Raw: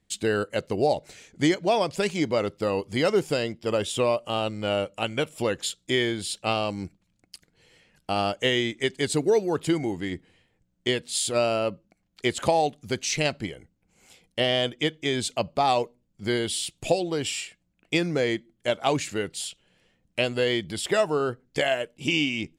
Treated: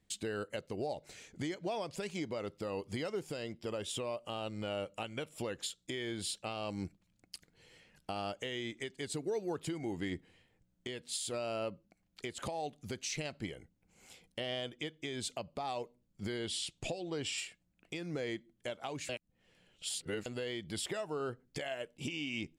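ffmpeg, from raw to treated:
-filter_complex "[0:a]asettb=1/sr,asplit=3[s0][s1][s2];[s0]atrim=end=16.374[s3];[s1]atrim=start=16.37:end=17.38,asetpts=PTS-STARTPTS,afade=t=in:d=0.004:c=qsin,afade=t=out:st=1.006:d=0.004:c=qsin,lowpass=7500[s4];[s2]atrim=start=17.376[s5];[s3][s4]acrossfade=d=0.004:c1=hsin:c2=qsin[s6];[s6][s5]acrossfade=d=0.004:c1=qsin:c2=hsin,asplit=3[s7][s8][s9];[s7]atrim=end=19.092[s10];[s8]atrim=start=19.088:end=20.262,asetpts=PTS-STARTPTS,areverse[s11];[s9]atrim=start=20.258[s12];[s10][s11]acrossfade=d=0.004:c1=hsin:c2=hsin[s13];[s13][s12]acrossfade=d=0.004:c1=hsin:c2=hsin,acompressor=threshold=0.0447:ratio=3,alimiter=level_in=1.06:limit=0.0631:level=0:latency=1:release=468,volume=0.944,volume=0.708"

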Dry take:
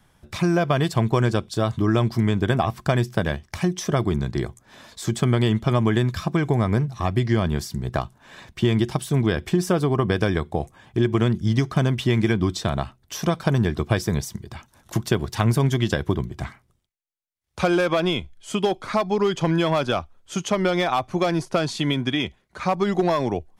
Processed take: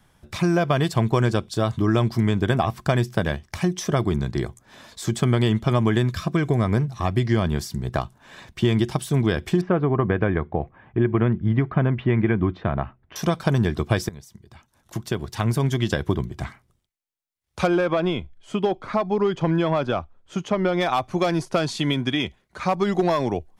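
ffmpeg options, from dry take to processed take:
-filter_complex "[0:a]asettb=1/sr,asplit=3[s0][s1][s2];[s0]atrim=end=6.084[s3];[s1]atrim=start=6.08:end=6.64,asetpts=PTS-STARTPTS,afade=t=in:d=0.004:c=qsin,afade=t=out:st=0.556:d=0.004:c=qsin,bandreject=f=850:w=5[s4];[s2]atrim=start=6.636[s5];[s3][s4]acrossfade=d=0.004:c1=hsin:c2=qsin[s6];[s6][s5]acrossfade=d=0.004:c1=qsin:c2=hsin,asettb=1/sr,asplit=3[s7][s8][s9];[s7]atrim=end=9.614[s10];[s8]atrim=start=9.61:end=13.16,asetpts=PTS-STARTPTS,afade=t=in:d=0.004:c=qsin,afade=t=out:st=3.546:d=0.004:c=qsin,lowpass=f=2300:w=0.5412,lowpass=f=2300:w=1.3066[s11];[s9]atrim=start=13.156[s12];[s10][s11]acrossfade=d=0.004:c1=hsin:c2=qsin[s13];[s13][s12]acrossfade=d=0.004:c1=qsin:c2=hsin,asplit=3[s14][s15][s16];[s14]afade=t=out:st=17.66:d=0.02[s17];[s15]lowpass=f=1700:p=1,afade=t=in:st=17.66:d=0.02,afade=t=out:st=20.8:d=0.02[s18];[s16]afade=t=in:st=20.8:d=0.02[s19];[s17][s18][s19]amix=inputs=3:normalize=0,asplit=2[s20][s21];[s20]atrim=end=14.09,asetpts=PTS-STARTPTS,afade=t=out:st=14.086:d=0.004:c=hsin:silence=0.105925[s22];[s21]atrim=start=14.09,asetpts=PTS-STARTPTS,afade=t=in:d=1.99:silence=0.105925[s23];[s22][s23]concat=n=2:v=0:a=1"

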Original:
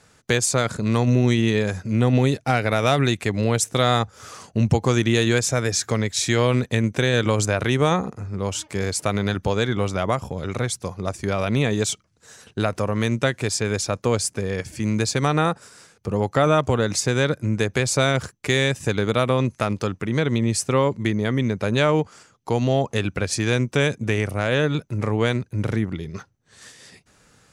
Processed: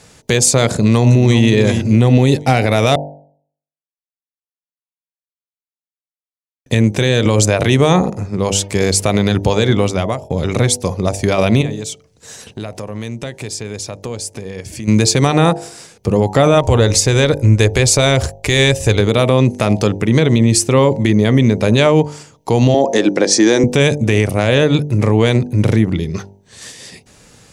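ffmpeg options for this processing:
-filter_complex "[0:a]asplit=2[s0][s1];[s1]afade=t=in:st=0.73:d=0.01,afade=t=out:st=1.44:d=0.01,aecho=0:1:370|740|1110:0.316228|0.0790569|0.0197642[s2];[s0][s2]amix=inputs=2:normalize=0,asplit=3[s3][s4][s5];[s3]afade=t=out:st=11.61:d=0.02[s6];[s4]acompressor=threshold=0.01:ratio=2.5:attack=3.2:release=140:knee=1:detection=peak,afade=t=in:st=11.61:d=0.02,afade=t=out:st=14.87:d=0.02[s7];[s5]afade=t=in:st=14.87:d=0.02[s8];[s6][s7][s8]amix=inputs=3:normalize=0,asplit=3[s9][s10][s11];[s9]afade=t=out:st=16.53:d=0.02[s12];[s10]asubboost=boost=11.5:cutoff=50,afade=t=in:st=16.53:d=0.02,afade=t=out:st=19:d=0.02[s13];[s11]afade=t=in:st=19:d=0.02[s14];[s12][s13][s14]amix=inputs=3:normalize=0,asettb=1/sr,asplit=3[s15][s16][s17];[s15]atrim=end=22.744[s18];[s16]atrim=start=22.74:end=23.64,asetpts=PTS-STARTPTS,afade=t=in:d=0.004:c=qsin,afade=t=out:st=0.896:d=0.004:c=qsin,highpass=f=200:w=0.5412,highpass=f=200:w=1.3066,equalizer=f=320:t=q:w=4:g=9,equalizer=f=550:t=q:w=4:g=5,equalizer=f=850:t=q:w=4:g=5,equalizer=f=1800:t=q:w=4:g=5,equalizer=f=2600:t=q:w=4:g=-8,equalizer=f=5700:t=q:w=4:g=7,lowpass=f=8700:w=0.5412,lowpass=f=8700:w=1.3066[s19];[s17]atrim=start=23.636[s20];[s18][s19]acrossfade=d=0.004:c1=hsin:c2=qsin[s21];[s21][s20]acrossfade=d=0.004:c1=qsin:c2=hsin,asplit=4[s22][s23][s24][s25];[s22]atrim=end=2.96,asetpts=PTS-STARTPTS,afade=t=out:st=2.956:d=0.004:c=hsin[s26];[s23]atrim=start=2.96:end=6.66,asetpts=PTS-STARTPTS,volume=0[s27];[s24]atrim=start=6.66:end=10.3,asetpts=PTS-STARTPTS,afade=t=in:d=0.004:c=hsin,afade=t=out:st=2.93:d=0.71:c=qsin[s28];[s25]atrim=start=10.3,asetpts=PTS-STARTPTS,afade=t=in:d=0.004:c=hsin[s29];[s26][s27][s28][s29]concat=n=4:v=0:a=1,equalizer=f=1400:t=o:w=0.73:g=-8,bandreject=f=49.29:t=h:w=4,bandreject=f=98.58:t=h:w=4,bandreject=f=147.87:t=h:w=4,bandreject=f=197.16:t=h:w=4,bandreject=f=246.45:t=h:w=4,bandreject=f=295.74:t=h:w=4,bandreject=f=345.03:t=h:w=4,bandreject=f=394.32:t=h:w=4,bandreject=f=443.61:t=h:w=4,bandreject=f=492.9:t=h:w=4,bandreject=f=542.19:t=h:w=4,bandreject=f=591.48:t=h:w=4,bandreject=f=640.77:t=h:w=4,bandreject=f=690.06:t=h:w=4,bandreject=f=739.35:t=h:w=4,bandreject=f=788.64:t=h:w=4,bandreject=f=837.93:t=h:w=4,bandreject=f=887.22:t=h:w=4,bandreject=f=936.51:t=h:w=4,alimiter=level_in=4.47:limit=0.891:release=50:level=0:latency=1,volume=0.891"

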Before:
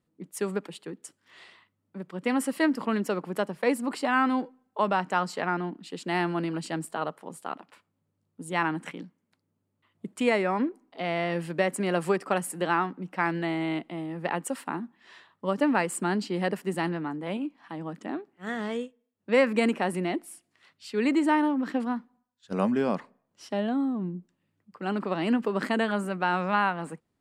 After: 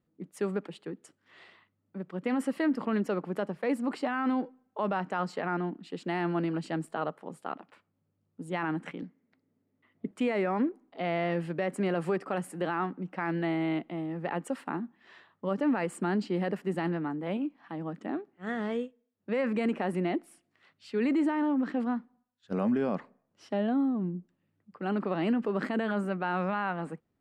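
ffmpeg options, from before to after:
-filter_complex "[0:a]asettb=1/sr,asplit=3[s0][s1][s2];[s0]atrim=end=9.024[s3];[s1]atrim=start=9.02:end=10.11,asetpts=PTS-STARTPTS,afade=t=in:d=0.004:c=qsin,afade=t=out:st=1.086:d=0.004:c=qsin,highpass=100,equalizer=f=260:t=q:w=4:g=9,equalizer=f=440:t=q:w=4:g=6,equalizer=f=690:t=q:w=4:g=3,equalizer=f=2000:t=q:w=4:g=8,lowpass=f=6500:w=0.5412,lowpass=f=6500:w=1.3066[s4];[s2]atrim=start=10.106[s5];[s3][s4]acrossfade=d=0.004:c1=hsin:c2=qsin[s6];[s6][s5]acrossfade=d=0.004:c1=qsin:c2=hsin,lowpass=f=2000:p=1,equalizer=f=980:w=6.2:g=-4,alimiter=limit=0.0944:level=0:latency=1:release=18"

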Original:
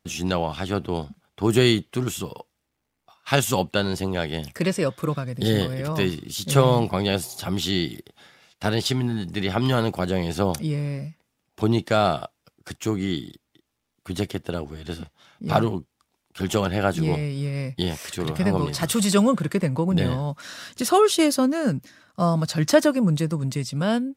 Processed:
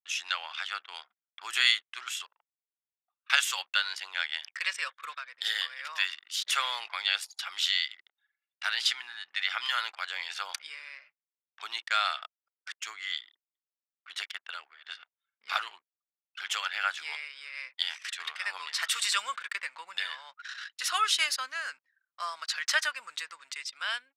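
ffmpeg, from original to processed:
-filter_complex "[0:a]asettb=1/sr,asplit=3[s0][s1][s2];[s0]atrim=end=2.264[s3];[s1]atrim=start=2.26:end=3.3,asetpts=PTS-STARTPTS,afade=t=in:d=0.004:c=qsin,afade=t=out:st=1.036:d=0.004:c=qsin,acompressor=threshold=0.00631:ratio=5:attack=3.2:release=140:knee=1:detection=peak[s4];[s2]atrim=start=3.296[s5];[s3][s4]acrossfade=d=0.004:c1=hsin:c2=qsin[s6];[s6][s5]acrossfade=d=0.004:c1=qsin:c2=hsin,aemphasis=mode=reproduction:type=bsi,anlmdn=0.631,highpass=f=1500:w=0.5412,highpass=f=1500:w=1.3066,volume=1.68"

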